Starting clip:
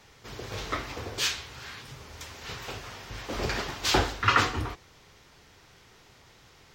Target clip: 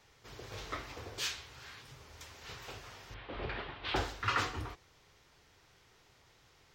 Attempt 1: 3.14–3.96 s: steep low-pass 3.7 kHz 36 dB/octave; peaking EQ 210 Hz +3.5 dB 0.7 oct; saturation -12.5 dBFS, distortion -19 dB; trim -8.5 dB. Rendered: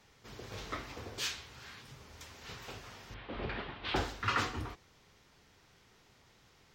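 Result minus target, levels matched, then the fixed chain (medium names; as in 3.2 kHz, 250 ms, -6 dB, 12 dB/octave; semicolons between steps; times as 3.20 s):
250 Hz band +3.0 dB
3.14–3.96 s: steep low-pass 3.7 kHz 36 dB/octave; peaking EQ 210 Hz -4 dB 0.7 oct; saturation -12.5 dBFS, distortion -20 dB; trim -8.5 dB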